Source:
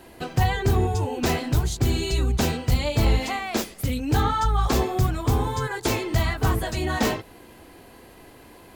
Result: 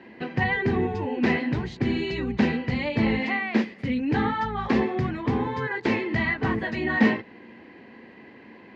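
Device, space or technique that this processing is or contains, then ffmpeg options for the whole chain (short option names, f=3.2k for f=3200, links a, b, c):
kitchen radio: -af "highpass=160,equalizer=f=220:t=q:w=4:g=10,equalizer=f=680:t=q:w=4:g=-6,equalizer=f=1.3k:t=q:w=4:g=-7,equalizer=f=1.9k:t=q:w=4:g=9,equalizer=f=3.5k:t=q:w=4:g=-7,lowpass=f=3.6k:w=0.5412,lowpass=f=3.6k:w=1.3066"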